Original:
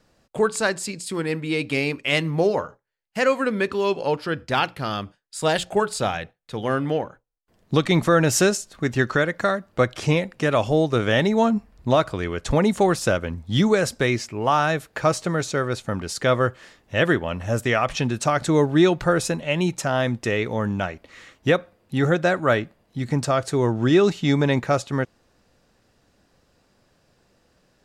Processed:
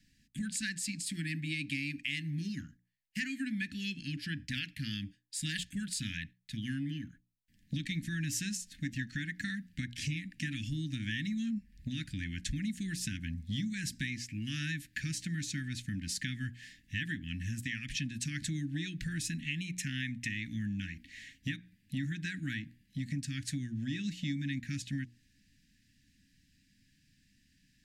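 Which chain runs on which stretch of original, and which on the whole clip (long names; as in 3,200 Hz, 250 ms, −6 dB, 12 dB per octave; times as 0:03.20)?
0:19.64–0:20.29: parametric band 2,200 Hz +8 dB 0.66 octaves + notch filter 4,800 Hz
whole clip: Chebyshev band-stop filter 290–1,700 Hz, order 5; downward compressor, threshold −30 dBFS; mains-hum notches 60/120/180/240/300/360/420/480/540 Hz; level −3 dB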